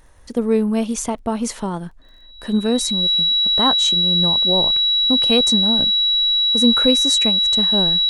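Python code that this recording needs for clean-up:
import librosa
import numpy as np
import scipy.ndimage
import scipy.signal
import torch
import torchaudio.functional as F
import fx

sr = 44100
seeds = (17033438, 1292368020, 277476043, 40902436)

y = fx.fix_declick_ar(x, sr, threshold=6.5)
y = fx.notch(y, sr, hz=3900.0, q=30.0)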